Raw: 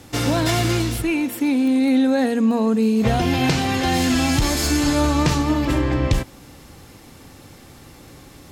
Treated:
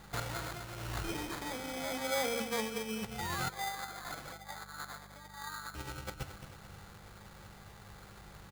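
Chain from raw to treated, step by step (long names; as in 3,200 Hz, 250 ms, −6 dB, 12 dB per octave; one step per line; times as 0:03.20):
tuned comb filter 220 Hz, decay 0.42 s, harmonics all, mix 50%
convolution reverb RT60 0.50 s, pre-delay 3 ms, DRR 16.5 dB
compressor whose output falls as the input rises −23 dBFS, ratio −0.5
0:03.18–0:04.41: sound drawn into the spectrogram rise 810–8,100 Hz −30 dBFS
repeating echo 219 ms, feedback 46%, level −9.5 dB
0:03.49–0:05.75: auto-filter band-pass saw up 1.2 Hz 550–3,000 Hz
sample-rate reduction 2,800 Hz, jitter 0%
low-shelf EQ 490 Hz −11 dB
hum with harmonics 50 Hz, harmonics 4, −49 dBFS −1 dB per octave
level −8 dB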